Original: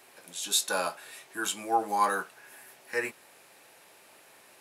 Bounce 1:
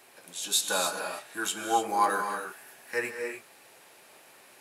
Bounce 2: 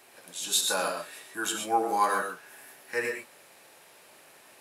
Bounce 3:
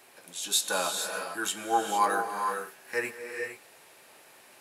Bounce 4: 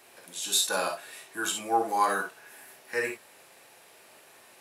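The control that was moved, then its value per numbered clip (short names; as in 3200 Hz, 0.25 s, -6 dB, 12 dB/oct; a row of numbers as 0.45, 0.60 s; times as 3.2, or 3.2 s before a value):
non-linear reverb, gate: 320, 150, 490, 80 ms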